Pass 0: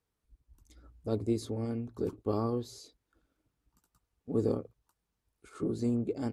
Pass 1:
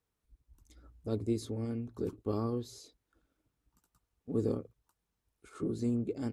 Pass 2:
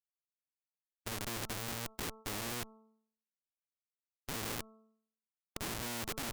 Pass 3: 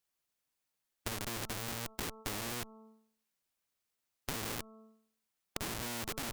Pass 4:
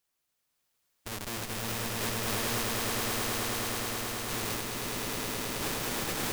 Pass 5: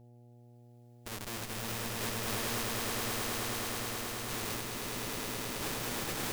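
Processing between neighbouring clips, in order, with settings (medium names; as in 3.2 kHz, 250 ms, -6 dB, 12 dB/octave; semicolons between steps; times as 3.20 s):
band-stop 4.6 kHz, Q 29; dynamic bell 760 Hz, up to -5 dB, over -48 dBFS, Q 1.1; trim -1 dB
Schmitt trigger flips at -39 dBFS; de-hum 220.1 Hz, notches 6; spectrum-flattening compressor 2:1; trim +10 dB
compression 3:1, threshold -49 dBFS, peak gain reduction 11 dB; trim +10.5 dB
peak limiter -27.5 dBFS, peak gain reduction 11.5 dB; echo with a slow build-up 106 ms, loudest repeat 8, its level -3.5 dB; trim +4 dB
mains buzz 120 Hz, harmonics 7, -53 dBFS -7 dB/octave; trim -3.5 dB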